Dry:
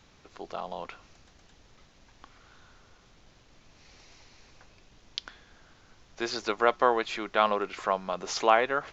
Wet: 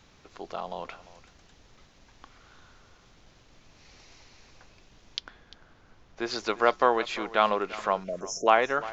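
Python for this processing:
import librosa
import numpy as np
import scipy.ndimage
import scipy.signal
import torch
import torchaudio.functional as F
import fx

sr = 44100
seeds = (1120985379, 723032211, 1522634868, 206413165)

y = fx.high_shelf(x, sr, hz=fx.line((5.19, 2600.0), (6.29, 3400.0)), db=-10.5, at=(5.19, 6.29), fade=0.02)
y = fx.spec_erase(y, sr, start_s=8.04, length_s=0.43, low_hz=700.0, high_hz=5200.0)
y = y + 10.0 ** (-17.5 / 20.0) * np.pad(y, (int(347 * sr / 1000.0), 0))[:len(y)]
y = y * librosa.db_to_amplitude(1.0)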